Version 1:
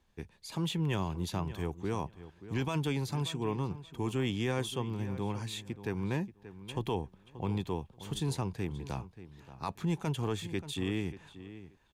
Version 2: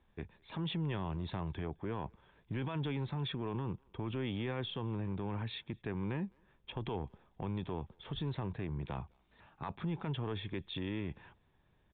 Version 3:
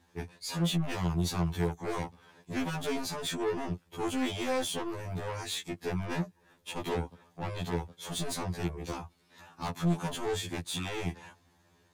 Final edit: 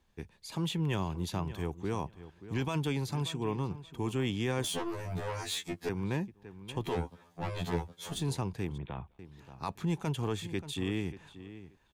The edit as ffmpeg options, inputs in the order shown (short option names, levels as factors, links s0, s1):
-filter_complex "[2:a]asplit=2[s0][s1];[0:a]asplit=4[s2][s3][s4][s5];[s2]atrim=end=4.642[s6];[s0]atrim=start=4.638:end=5.892[s7];[s3]atrim=start=5.888:end=7.02[s8];[s1]atrim=start=6.78:end=8.26[s9];[s4]atrim=start=8.02:end=8.782[s10];[1:a]atrim=start=8.778:end=9.192[s11];[s5]atrim=start=9.188[s12];[s6][s7]acrossfade=d=0.004:c1=hsin:c2=hsin[s13];[s13][s8]acrossfade=d=0.004:c1=hsin:c2=hsin[s14];[s14][s9]acrossfade=d=0.24:c1=tri:c2=tri[s15];[s15][s10]acrossfade=d=0.24:c1=tri:c2=tri[s16];[s16][s11]acrossfade=d=0.004:c1=hsin:c2=hsin[s17];[s17][s12]acrossfade=d=0.004:c1=hsin:c2=hsin"